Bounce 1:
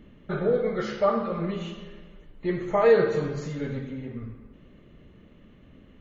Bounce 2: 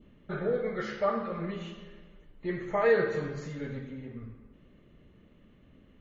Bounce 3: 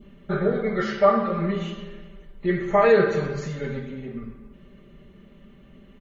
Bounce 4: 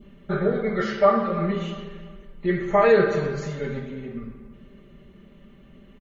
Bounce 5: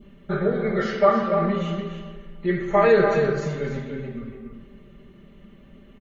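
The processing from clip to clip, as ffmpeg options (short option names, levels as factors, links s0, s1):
-af "adynamicequalizer=threshold=0.00501:dfrequency=1800:dqfactor=2.3:tfrequency=1800:tqfactor=2.3:attack=5:release=100:ratio=0.375:range=3.5:mode=boostabove:tftype=bell,volume=0.501"
-af "aecho=1:1:5.1:0.74,volume=2.11"
-filter_complex "[0:a]asplit=2[s0][s1];[s1]adelay=340,lowpass=f=1900:p=1,volume=0.141,asplit=2[s2][s3];[s3]adelay=340,lowpass=f=1900:p=1,volume=0.33,asplit=2[s4][s5];[s5]adelay=340,lowpass=f=1900:p=1,volume=0.33[s6];[s0][s2][s4][s6]amix=inputs=4:normalize=0"
-filter_complex "[0:a]asplit=2[s0][s1];[s1]adelay=291.5,volume=0.501,highshelf=f=4000:g=-6.56[s2];[s0][s2]amix=inputs=2:normalize=0"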